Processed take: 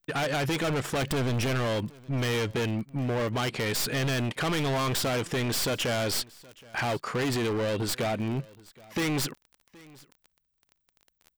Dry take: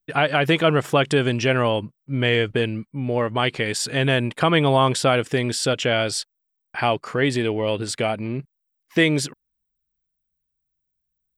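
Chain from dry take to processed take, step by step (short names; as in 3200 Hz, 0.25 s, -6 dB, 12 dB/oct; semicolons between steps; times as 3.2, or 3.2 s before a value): tracing distortion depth 0.075 ms; 1.02–1.67 low shelf 210 Hz +7.5 dB; in parallel at +2 dB: limiter -14.5 dBFS, peak gain reduction 9 dB; on the sum: hard clip -19 dBFS, distortion -5 dB; crackle 22/s -30 dBFS; echo 0.772 s -23.5 dB; gain -6.5 dB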